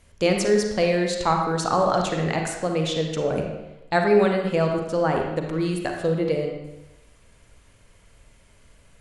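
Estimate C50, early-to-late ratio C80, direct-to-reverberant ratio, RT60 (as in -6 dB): 3.0 dB, 5.5 dB, 2.0 dB, 0.95 s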